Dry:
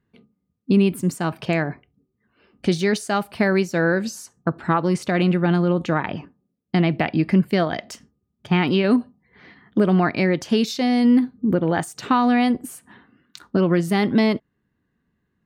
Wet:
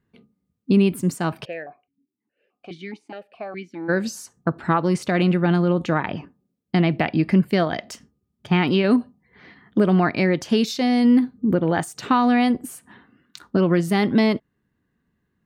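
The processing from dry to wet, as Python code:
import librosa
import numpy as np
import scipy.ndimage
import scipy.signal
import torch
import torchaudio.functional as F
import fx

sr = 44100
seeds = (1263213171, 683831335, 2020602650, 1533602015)

y = fx.vowel_held(x, sr, hz=4.8, at=(1.44, 3.88), fade=0.02)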